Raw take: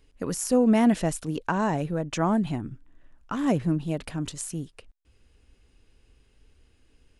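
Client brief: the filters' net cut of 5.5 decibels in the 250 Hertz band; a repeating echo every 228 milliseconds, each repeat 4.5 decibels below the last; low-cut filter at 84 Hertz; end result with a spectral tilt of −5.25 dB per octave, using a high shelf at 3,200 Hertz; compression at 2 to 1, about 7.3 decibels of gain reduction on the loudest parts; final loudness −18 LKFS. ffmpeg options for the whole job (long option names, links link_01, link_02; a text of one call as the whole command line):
ffmpeg -i in.wav -af "highpass=84,equalizer=frequency=250:width_type=o:gain=-6.5,highshelf=frequency=3200:gain=-4.5,acompressor=threshold=-34dB:ratio=2,aecho=1:1:228|456|684|912|1140|1368|1596|1824|2052:0.596|0.357|0.214|0.129|0.0772|0.0463|0.0278|0.0167|0.01,volume=16dB" out.wav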